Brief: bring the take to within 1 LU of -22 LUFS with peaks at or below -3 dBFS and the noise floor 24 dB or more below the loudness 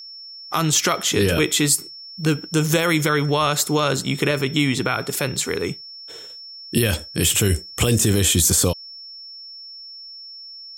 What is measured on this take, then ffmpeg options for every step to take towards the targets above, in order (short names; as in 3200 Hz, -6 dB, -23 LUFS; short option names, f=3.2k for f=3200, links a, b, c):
steady tone 5400 Hz; tone level -36 dBFS; loudness -19.5 LUFS; peak -5.5 dBFS; loudness target -22.0 LUFS
-> -af "bandreject=f=5.4k:w=30"
-af "volume=-2.5dB"